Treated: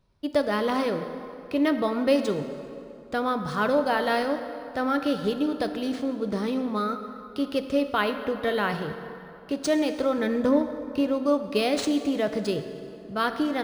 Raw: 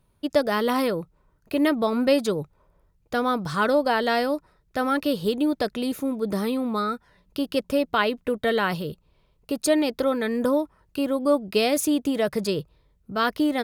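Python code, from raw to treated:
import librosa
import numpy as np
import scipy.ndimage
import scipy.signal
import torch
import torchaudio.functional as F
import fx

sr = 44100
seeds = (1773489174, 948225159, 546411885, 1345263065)

y = fx.low_shelf(x, sr, hz=280.0, db=7.0, at=(10.18, 11.01))
y = fx.rev_plate(y, sr, seeds[0], rt60_s=2.8, hf_ratio=0.65, predelay_ms=0, drr_db=7.5)
y = np.interp(np.arange(len(y)), np.arange(len(y))[::3], y[::3])
y = y * librosa.db_to_amplitude(-2.5)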